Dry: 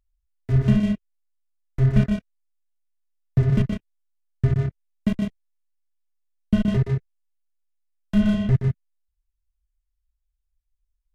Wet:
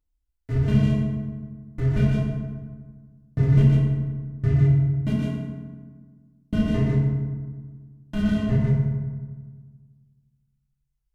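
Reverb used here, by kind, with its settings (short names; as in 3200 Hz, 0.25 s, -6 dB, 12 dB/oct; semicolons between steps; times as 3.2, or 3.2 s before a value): FDN reverb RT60 1.5 s, low-frequency decay 1.35×, high-frequency decay 0.55×, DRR -6 dB; gain -6.5 dB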